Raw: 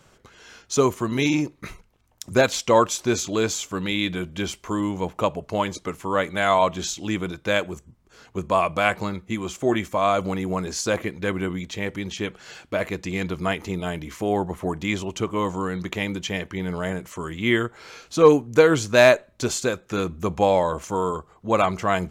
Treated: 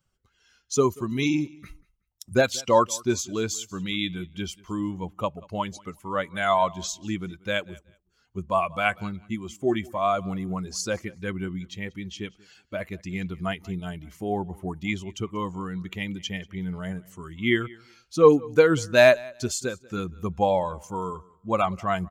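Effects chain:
spectral dynamics exaggerated over time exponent 1.5
on a send: repeating echo 186 ms, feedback 20%, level −23.5 dB

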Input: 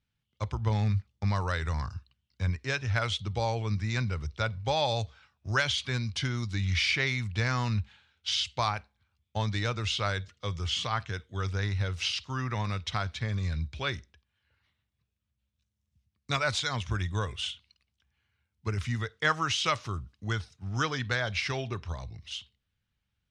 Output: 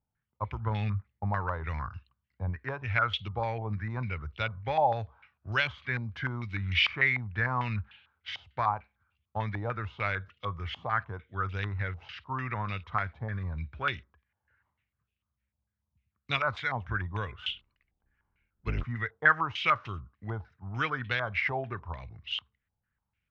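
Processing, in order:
0:17.46–0:18.84: sub-octave generator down 1 octave, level +3 dB
low-pass on a step sequencer 6.7 Hz 810–2,800 Hz
level −4 dB

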